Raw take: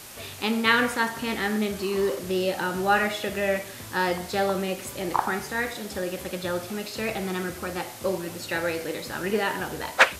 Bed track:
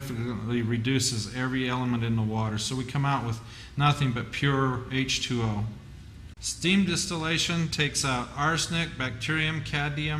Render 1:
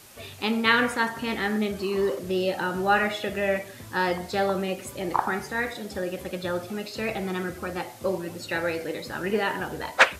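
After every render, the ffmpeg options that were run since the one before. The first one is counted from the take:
ffmpeg -i in.wav -af "afftdn=noise_reduction=7:noise_floor=-40" out.wav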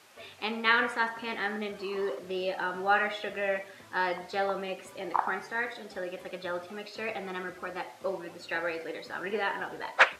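ffmpeg -i in.wav -af "highpass=frequency=810:poles=1,aemphasis=mode=reproduction:type=75kf" out.wav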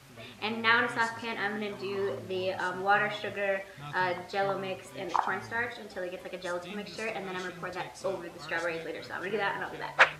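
ffmpeg -i in.wav -i bed.wav -filter_complex "[1:a]volume=-21dB[link_01];[0:a][link_01]amix=inputs=2:normalize=0" out.wav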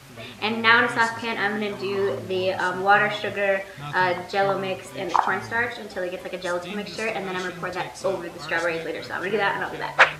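ffmpeg -i in.wav -af "volume=8dB,alimiter=limit=-3dB:level=0:latency=1" out.wav

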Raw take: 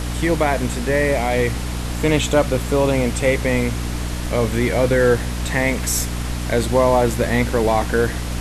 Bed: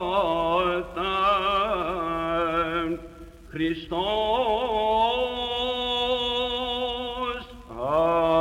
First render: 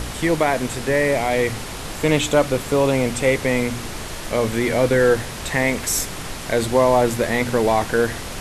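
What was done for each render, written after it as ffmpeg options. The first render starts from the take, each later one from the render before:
ffmpeg -i in.wav -af "bandreject=frequency=60:width_type=h:width=4,bandreject=frequency=120:width_type=h:width=4,bandreject=frequency=180:width_type=h:width=4,bandreject=frequency=240:width_type=h:width=4,bandreject=frequency=300:width_type=h:width=4" out.wav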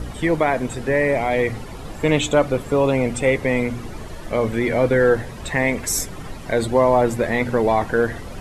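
ffmpeg -i in.wav -af "afftdn=noise_reduction=13:noise_floor=-31" out.wav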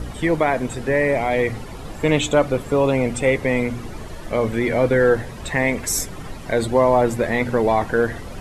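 ffmpeg -i in.wav -af anull out.wav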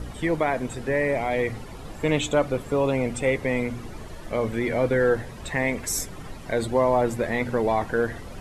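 ffmpeg -i in.wav -af "volume=-5dB" out.wav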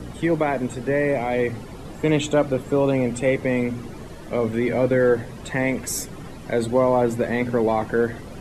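ffmpeg -i in.wav -filter_complex "[0:a]acrossover=split=110|490|5500[link_01][link_02][link_03][link_04];[link_01]alimiter=level_in=13.5dB:limit=-24dB:level=0:latency=1,volume=-13.5dB[link_05];[link_02]acontrast=32[link_06];[link_05][link_06][link_03][link_04]amix=inputs=4:normalize=0" out.wav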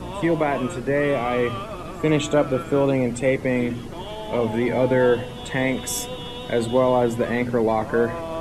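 ffmpeg -i in.wav -i bed.wav -filter_complex "[1:a]volume=-9.5dB[link_01];[0:a][link_01]amix=inputs=2:normalize=0" out.wav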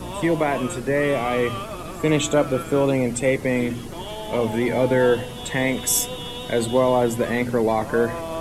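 ffmpeg -i in.wav -af "crystalizer=i=1.5:c=0" out.wav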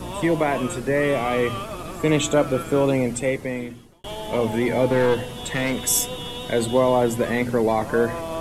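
ffmpeg -i in.wav -filter_complex "[0:a]asettb=1/sr,asplit=3[link_01][link_02][link_03];[link_01]atrim=end=4.874[link_04];[link_02]atrim=start=4.87:end=5.86,asetpts=PTS-STARTPTS,afade=type=in:duration=0.004:curve=qsin,afade=type=out:start_time=0.986:duration=0.004:curve=qsin,aeval=exprs='clip(val(0),-1,0.106)':channel_layout=same[link_05];[link_03]atrim=start=5.856[link_06];[link_04][link_05]acrossfade=duration=0.004:curve1=hsin:curve2=qsin[link_07];[link_07][link_06]acrossfade=duration=0.004:curve1=qsin:curve2=hsin,asplit=2[link_08][link_09];[link_08]atrim=end=4.04,asetpts=PTS-STARTPTS,afade=type=out:start_time=2.98:duration=1.06[link_10];[link_09]atrim=start=4.04,asetpts=PTS-STARTPTS,afade=type=in:duration=0.004:curve=hsin[link_11];[link_10][link_11]concat=n=2:v=0:a=1" out.wav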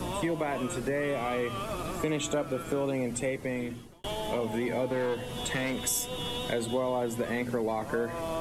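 ffmpeg -i in.wav -filter_complex "[0:a]acrossover=split=130[link_01][link_02];[link_01]alimiter=level_in=11dB:limit=-24dB:level=0:latency=1,volume=-11dB[link_03];[link_03][link_02]amix=inputs=2:normalize=0,acompressor=threshold=-30dB:ratio=3" out.wav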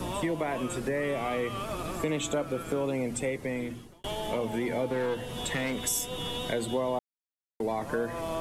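ffmpeg -i in.wav -filter_complex "[0:a]asplit=3[link_01][link_02][link_03];[link_01]atrim=end=6.99,asetpts=PTS-STARTPTS,afade=type=out:start_time=6.986:duration=0.004:curve=hsin[link_04];[link_02]atrim=start=6.99:end=7.6,asetpts=PTS-STARTPTS,volume=0[link_05];[link_03]atrim=start=7.6,asetpts=PTS-STARTPTS,afade=type=in:duration=0.004:curve=hsin[link_06];[link_04][link_05][link_06]concat=n=3:v=0:a=1" out.wav

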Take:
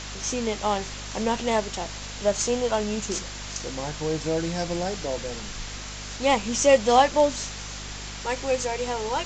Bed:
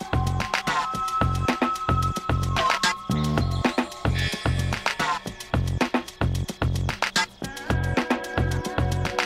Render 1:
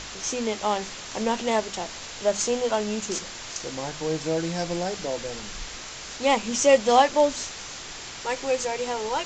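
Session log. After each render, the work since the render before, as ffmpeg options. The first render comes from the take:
ffmpeg -i in.wav -af "bandreject=frequency=50:width_type=h:width=6,bandreject=frequency=100:width_type=h:width=6,bandreject=frequency=150:width_type=h:width=6,bandreject=frequency=200:width_type=h:width=6,bandreject=frequency=250:width_type=h:width=6" out.wav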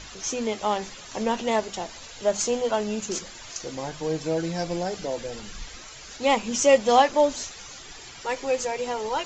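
ffmpeg -i in.wav -af "afftdn=noise_reduction=11:noise_floor=-39" out.wav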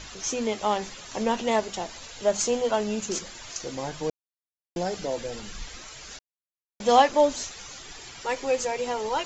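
ffmpeg -i in.wav -filter_complex "[0:a]asplit=5[link_01][link_02][link_03][link_04][link_05];[link_01]atrim=end=4.1,asetpts=PTS-STARTPTS,afade=type=out:start_time=4.096:duration=0.004:curve=hsin[link_06];[link_02]atrim=start=4.1:end=4.76,asetpts=PTS-STARTPTS,volume=0[link_07];[link_03]atrim=start=4.76:end=6.19,asetpts=PTS-STARTPTS,afade=type=in:duration=0.004:curve=hsin,afade=type=out:start_time=1.426:duration=0.004:curve=hsin[link_08];[link_04]atrim=start=6.19:end=6.8,asetpts=PTS-STARTPTS,volume=0[link_09];[link_05]atrim=start=6.8,asetpts=PTS-STARTPTS,afade=type=in:duration=0.004:curve=hsin[link_10];[link_06][link_07][link_08][link_09][link_10]concat=n=5:v=0:a=1" out.wav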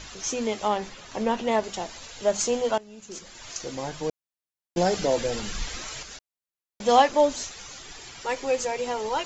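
ffmpeg -i in.wav -filter_complex "[0:a]asettb=1/sr,asplit=3[link_01][link_02][link_03];[link_01]atrim=end=0.684[link_04];[link_02]atrim=start=0.68:end=1.64,asetpts=PTS-STARTPTS,afade=type=in:duration=0.004:curve=qsin,afade=type=out:start_time=0.956:duration=0.004:curve=qsin,aemphasis=mode=reproduction:type=cd[link_05];[link_03]atrim=start=1.636[link_06];[link_04][link_05]acrossfade=duration=0.004:curve1=hsin:curve2=qsin[link_07];[link_07][link_06]acrossfade=duration=0.004:curve1=qsin:curve2=hsin,asettb=1/sr,asplit=3[link_08][link_09][link_10];[link_08]atrim=end=4.774[link_11];[link_09]atrim=start=4.77:end=6.03,asetpts=PTS-STARTPTS,afade=type=in:duration=0.004:curve=qsin,afade=type=out:start_time=1.256:duration=0.004:curve=qsin,acontrast=63[link_12];[link_10]atrim=start=6.026[link_13];[link_11][link_12]acrossfade=duration=0.004:curve1=hsin:curve2=qsin[link_14];[link_14][link_13]acrossfade=duration=0.004:curve1=qsin:curve2=hsin,asplit=2[link_15][link_16];[link_15]atrim=end=2.78,asetpts=PTS-STARTPTS,afade=type=out:start_time=2.776:duration=0.004:curve=hsin:silence=0.105925[link_17];[link_16]atrim=start=2.78,asetpts=PTS-STARTPTS,afade=type=in:duration=0.7:curve=qua:silence=0.105925[link_18];[link_17][link_18]concat=n=2:v=0:a=1" out.wav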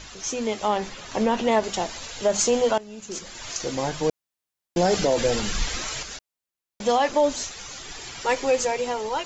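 ffmpeg -i in.wav -af "dynaudnorm=framelen=140:gausssize=11:maxgain=6dB,alimiter=limit=-11.5dB:level=0:latency=1:release=47" out.wav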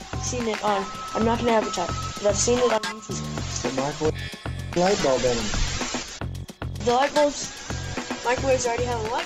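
ffmpeg -i in.wav -i bed.wav -filter_complex "[1:a]volume=-7.5dB[link_01];[0:a][link_01]amix=inputs=2:normalize=0" out.wav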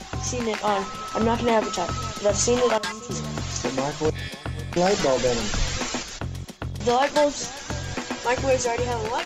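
ffmpeg -i in.wav -af "aecho=1:1:533:0.0841" out.wav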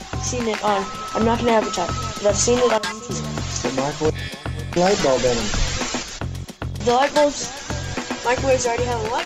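ffmpeg -i in.wav -af "volume=3.5dB" out.wav

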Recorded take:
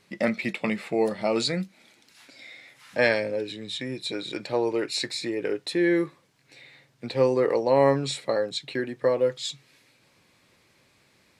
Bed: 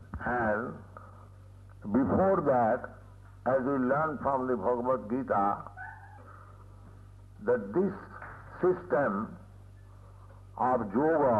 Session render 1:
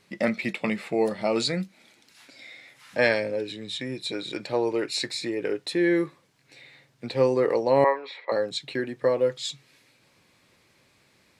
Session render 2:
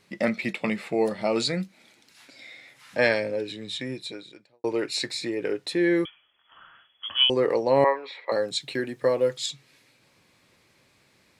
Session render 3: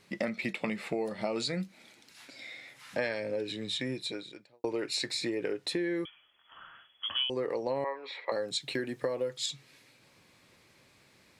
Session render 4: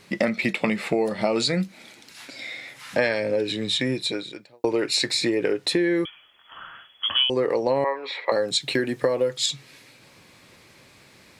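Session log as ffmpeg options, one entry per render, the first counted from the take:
ffmpeg -i in.wav -filter_complex "[0:a]asettb=1/sr,asplit=3[link_01][link_02][link_03];[link_01]atrim=end=7.844[link_04];[link_02]atrim=start=7.84:end=8.32,asetpts=PTS-STARTPTS,afade=type=in:duration=0.004:curve=qsin,afade=type=out:start_time=0.476:duration=0.004:curve=qsin,highpass=frequency=460:width=0.5412,highpass=frequency=460:width=1.3066,equalizer=frequency=650:width_type=q:width=4:gain=-4,equalizer=frequency=980:width_type=q:width=4:gain=8,equalizer=frequency=1400:width_type=q:width=4:gain=-5,equalizer=frequency=2000:width_type=q:width=4:gain=6,equalizer=frequency=2900:width_type=q:width=4:gain=-8,lowpass=frequency=3100:width=0.5412,lowpass=frequency=3100:width=1.3066[link_05];[link_03]atrim=start=8.316[link_06];[link_04][link_05]acrossfade=duration=0.004:curve1=hsin:curve2=qsin[link_07];[link_07][link_06]acrossfade=duration=0.004:curve1=qsin:curve2=hsin" out.wav
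ffmpeg -i in.wav -filter_complex "[0:a]asettb=1/sr,asplit=3[link_01][link_02][link_03];[link_01]atrim=end=6.054[link_04];[link_02]atrim=start=6.05:end=7.3,asetpts=PTS-STARTPTS,afade=type=in:duration=0.004:curve=qsin,afade=type=out:start_time=1.246:duration=0.004:curve=qsin,lowpass=frequency=3000:width_type=q:width=0.5098,lowpass=frequency=3000:width_type=q:width=0.6013,lowpass=frequency=3000:width_type=q:width=0.9,lowpass=frequency=3000:width_type=q:width=2.563,afreqshift=-3500[link_05];[link_03]atrim=start=7.296[link_06];[link_04][link_05]acrossfade=duration=0.004:curve1=hsin:curve2=qsin[link_07];[link_07][link_06]acrossfade=duration=0.004:curve1=qsin:curve2=hsin,asettb=1/sr,asplit=3[link_08][link_09][link_10];[link_08]atrim=end=8.264[link_11];[link_09]atrim=start=8.26:end=9.46,asetpts=PTS-STARTPTS,afade=type=in:duration=0.004:curve=qsin,afade=type=out:start_time=1.196:duration=0.004:curve=qsin,highshelf=frequency=6400:gain=9.5[link_12];[link_10]atrim=start=9.456[link_13];[link_11][link_12]acrossfade=duration=0.004:curve1=hsin:curve2=qsin[link_14];[link_14][link_13]acrossfade=duration=0.004:curve1=qsin:curve2=hsin,asplit=2[link_15][link_16];[link_15]atrim=end=4.64,asetpts=PTS-STARTPTS,afade=type=out:start_time=3.91:duration=0.73:curve=qua[link_17];[link_16]atrim=start=4.64,asetpts=PTS-STARTPTS,afade=type=in:duration=0.004:curve=hsin[link_18];[link_17][link_18]concat=n=2:v=0:a=1" out.wav
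ffmpeg -i in.wav -af "acompressor=threshold=-29dB:ratio=8" out.wav
ffmpeg -i in.wav -af "volume=10dB" out.wav

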